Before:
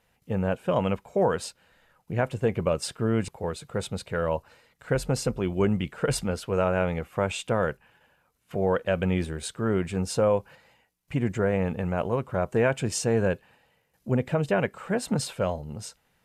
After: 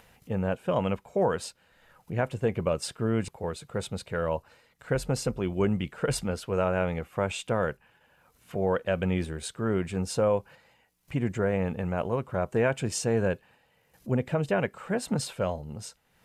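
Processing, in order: upward compressor, threshold -45 dBFS; trim -2 dB

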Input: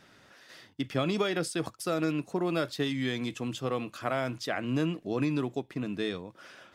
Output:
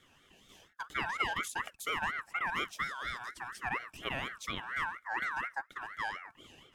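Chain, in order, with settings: static phaser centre 770 Hz, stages 6; ring modulator with a swept carrier 1.5 kHz, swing 20%, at 4.2 Hz

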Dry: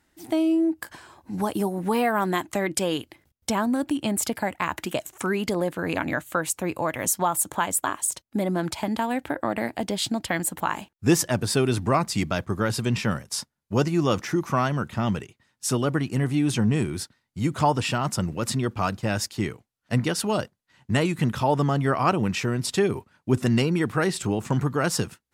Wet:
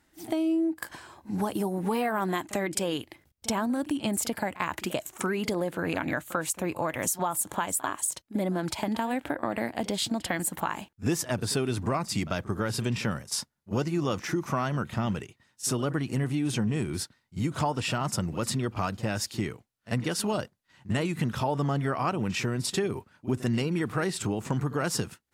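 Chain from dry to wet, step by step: compression 3:1, threshold -26 dBFS, peak gain reduction 9.5 dB; on a send: reverse echo 43 ms -16.5 dB

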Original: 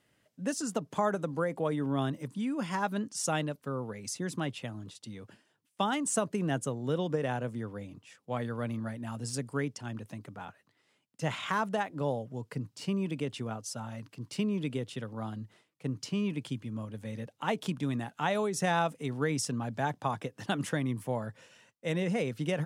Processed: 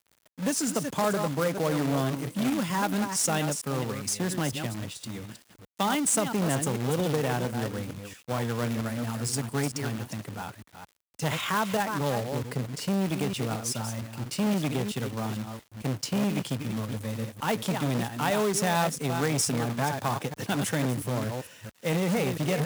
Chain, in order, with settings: chunks repeated in reverse 226 ms, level -8.5 dB; treble shelf 9.5 kHz +9.5 dB; in parallel at -1 dB: peak limiter -24 dBFS, peak gain reduction 9 dB; on the sum: bass shelf 83 Hz +6 dB; companded quantiser 4-bit; high-pass 45 Hz; transformer saturation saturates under 620 Hz

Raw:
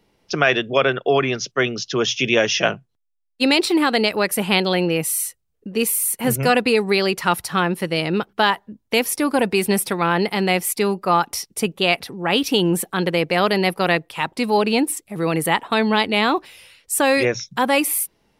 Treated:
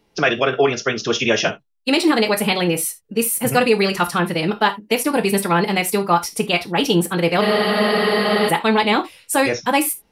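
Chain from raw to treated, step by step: gated-style reverb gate 170 ms falling, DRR 5.5 dB; time stretch by phase-locked vocoder 0.55×; spectral freeze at 7.44 s, 1.05 s; trim +1 dB

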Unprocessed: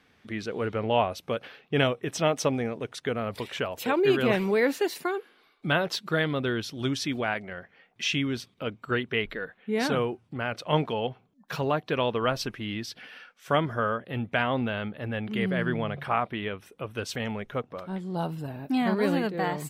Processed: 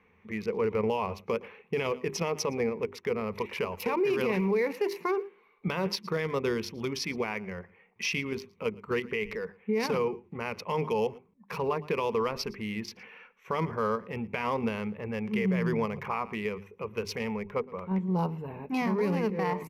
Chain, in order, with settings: local Wiener filter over 9 samples; rippled EQ curve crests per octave 0.84, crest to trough 12 dB; in parallel at 0 dB: level held to a coarse grid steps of 14 dB; on the sum: hum notches 50/100/150/200/250/300/350/400 Hz; delay 114 ms -24 dB; peak limiter -15.5 dBFS, peak gain reduction 10 dB; trim -4.5 dB

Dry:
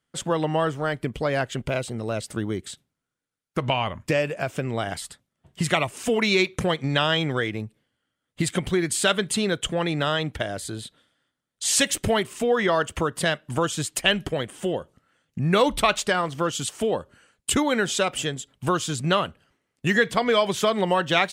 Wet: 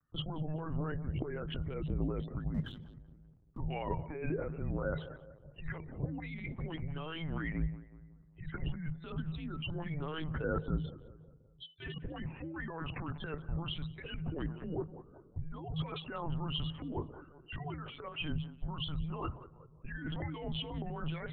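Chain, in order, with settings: local Wiener filter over 9 samples; 5.77–6.54 s: wind noise 470 Hz -27 dBFS; compressor with a negative ratio -32 dBFS, ratio -1; 17.77–18.19 s: three-band isolator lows -22 dB, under 510 Hz, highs -21 dB, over 2.2 kHz; simulated room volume 3300 m³, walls mixed, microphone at 0.35 m; loudest bins only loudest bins 32; on a send: band-passed feedback delay 193 ms, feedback 50%, band-pass 810 Hz, level -13 dB; on the sum: LPC vocoder at 8 kHz pitch kept; 2.54–3.58 s: waveshaping leveller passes 1; frequency shift -160 Hz; trim -6 dB

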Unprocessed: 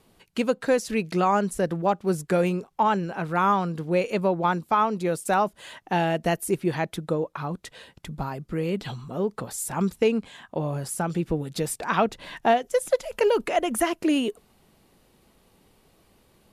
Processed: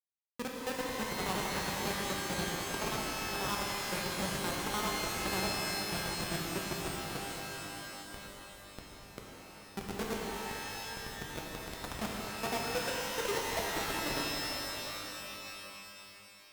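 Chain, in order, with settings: time reversed locally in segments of 74 ms; on a send: filtered feedback delay 891 ms, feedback 76%, low-pass 1.3 kHz, level -24 dB; on the sum: power-law waveshaper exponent 2; in parallel at +2.5 dB: compression 12:1, threshold -39 dBFS, peak gain reduction 20 dB; on the sum: Schmitt trigger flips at -22 dBFS; high-pass 63 Hz 6 dB/octave; bass shelf 230 Hz -8 dB; pitch-shifted reverb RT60 3.3 s, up +12 st, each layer -2 dB, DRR -2 dB

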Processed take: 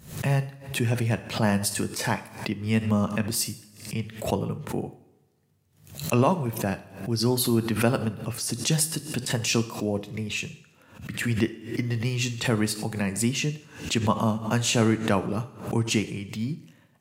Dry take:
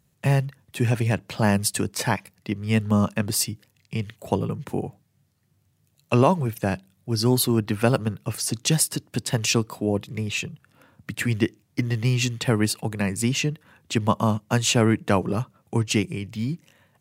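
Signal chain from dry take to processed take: two-slope reverb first 0.6 s, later 1.7 s, DRR 9.5 dB; swell ahead of each attack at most 110 dB/s; trim -3.5 dB

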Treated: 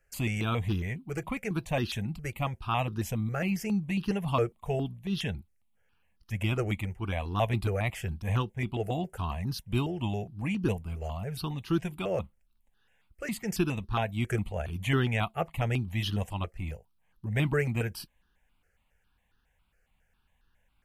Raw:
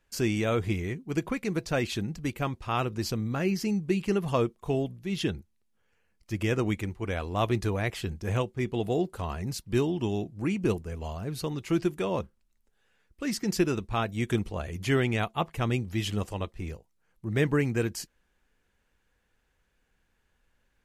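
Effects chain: 0.62–1.25 s: hard clipper -23 dBFS, distortion -30 dB; stepped phaser 7.3 Hz 990–2200 Hz; trim +2 dB

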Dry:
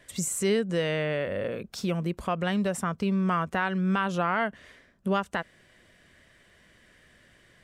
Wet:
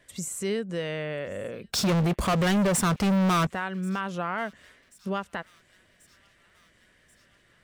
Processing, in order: 1.73–3.47 s: waveshaping leveller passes 5; feedback echo behind a high-pass 1085 ms, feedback 62%, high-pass 2.2 kHz, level -24 dB; trim -4 dB

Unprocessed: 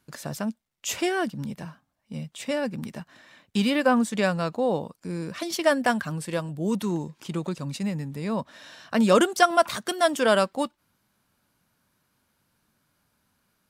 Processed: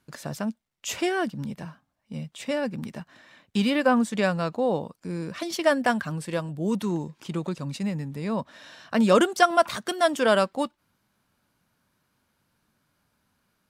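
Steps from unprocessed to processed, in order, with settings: treble shelf 6.7 kHz -5 dB

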